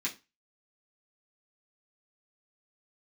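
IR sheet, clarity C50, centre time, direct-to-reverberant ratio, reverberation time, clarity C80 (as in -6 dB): 15.5 dB, 13 ms, -6.5 dB, 0.25 s, 22.5 dB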